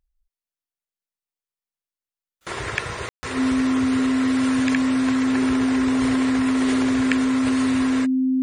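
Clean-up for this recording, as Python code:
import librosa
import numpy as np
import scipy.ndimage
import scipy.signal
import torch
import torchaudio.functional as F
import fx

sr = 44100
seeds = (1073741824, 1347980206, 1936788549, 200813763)

y = fx.notch(x, sr, hz=260.0, q=30.0)
y = fx.fix_ambience(y, sr, seeds[0], print_start_s=0.0, print_end_s=0.5, start_s=3.09, end_s=3.23)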